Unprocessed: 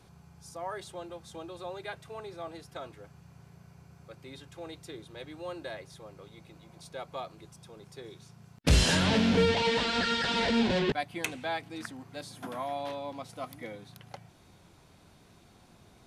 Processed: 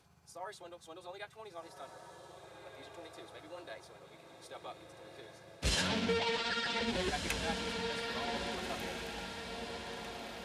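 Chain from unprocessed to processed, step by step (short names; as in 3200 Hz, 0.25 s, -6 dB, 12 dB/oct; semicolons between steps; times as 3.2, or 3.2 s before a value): granular stretch 0.65×, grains 0.122 s; low shelf 360 Hz -8 dB; diffused feedback echo 1.578 s, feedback 52%, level -4.5 dB; gain -4 dB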